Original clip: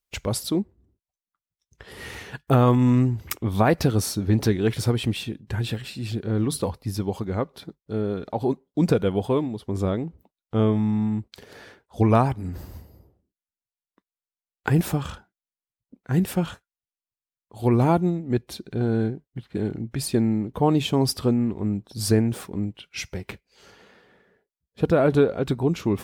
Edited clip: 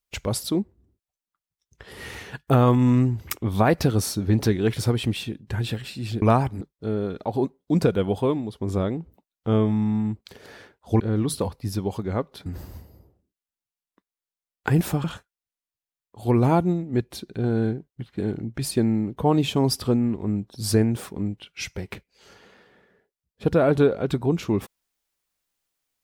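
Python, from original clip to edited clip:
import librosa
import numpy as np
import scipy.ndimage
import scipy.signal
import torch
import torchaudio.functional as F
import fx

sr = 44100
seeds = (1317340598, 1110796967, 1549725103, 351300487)

y = fx.edit(x, sr, fx.swap(start_s=6.22, length_s=1.46, other_s=12.07, other_length_s=0.39),
    fx.cut(start_s=15.04, length_s=1.37), tone=tone)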